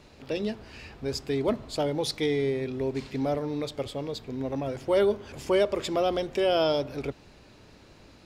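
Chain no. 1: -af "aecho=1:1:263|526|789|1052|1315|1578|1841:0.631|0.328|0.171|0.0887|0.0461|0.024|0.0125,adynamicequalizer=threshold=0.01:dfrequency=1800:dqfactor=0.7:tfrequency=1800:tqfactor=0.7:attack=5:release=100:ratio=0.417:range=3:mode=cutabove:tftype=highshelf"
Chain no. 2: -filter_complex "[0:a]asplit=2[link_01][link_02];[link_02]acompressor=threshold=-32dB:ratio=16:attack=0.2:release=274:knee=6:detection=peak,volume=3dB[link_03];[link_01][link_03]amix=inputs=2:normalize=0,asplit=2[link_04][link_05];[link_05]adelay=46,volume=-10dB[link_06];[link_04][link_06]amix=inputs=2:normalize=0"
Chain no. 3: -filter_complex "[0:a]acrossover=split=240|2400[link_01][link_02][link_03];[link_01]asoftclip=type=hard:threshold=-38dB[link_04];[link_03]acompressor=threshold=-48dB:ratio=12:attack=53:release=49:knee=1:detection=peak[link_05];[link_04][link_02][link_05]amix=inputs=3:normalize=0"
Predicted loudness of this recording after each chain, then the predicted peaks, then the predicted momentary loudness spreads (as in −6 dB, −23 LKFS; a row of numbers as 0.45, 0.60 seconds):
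−27.5, −26.0, −29.0 LKFS; −13.0, −9.5, −13.5 dBFS; 11, 16, 11 LU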